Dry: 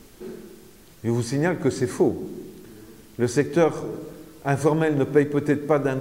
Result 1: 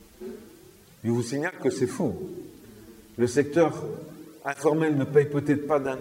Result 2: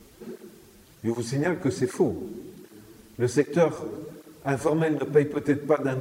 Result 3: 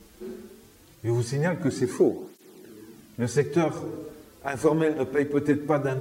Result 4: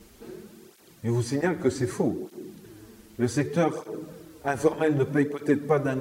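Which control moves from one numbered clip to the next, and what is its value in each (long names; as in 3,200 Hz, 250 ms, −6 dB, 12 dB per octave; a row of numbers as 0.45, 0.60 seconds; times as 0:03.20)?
through-zero flanger with one copy inverted, nulls at: 0.33, 1.3, 0.21, 0.65 Hertz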